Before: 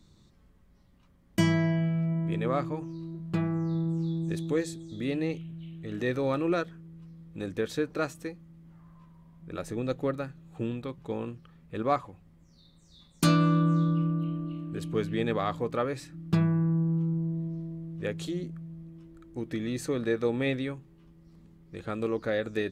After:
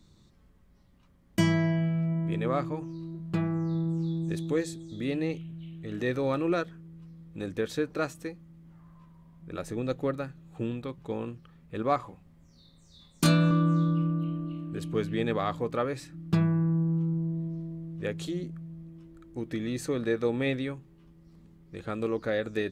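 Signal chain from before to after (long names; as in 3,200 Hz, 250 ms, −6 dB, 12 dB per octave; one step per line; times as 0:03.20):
0:11.97–0:13.51: double-tracking delay 26 ms −4.5 dB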